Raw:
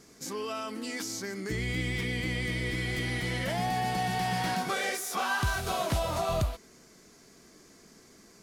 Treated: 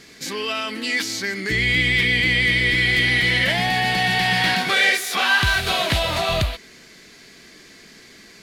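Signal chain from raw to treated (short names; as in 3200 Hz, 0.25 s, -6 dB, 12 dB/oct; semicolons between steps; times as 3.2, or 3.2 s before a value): band shelf 2700 Hz +11 dB; gain +6.5 dB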